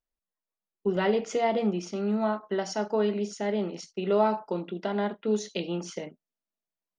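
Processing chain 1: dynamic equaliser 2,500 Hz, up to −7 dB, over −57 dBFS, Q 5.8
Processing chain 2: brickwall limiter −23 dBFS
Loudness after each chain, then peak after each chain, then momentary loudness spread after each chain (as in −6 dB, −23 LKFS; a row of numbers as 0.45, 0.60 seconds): −29.0, −33.0 LKFS; −12.5, −23.0 dBFS; 9, 5 LU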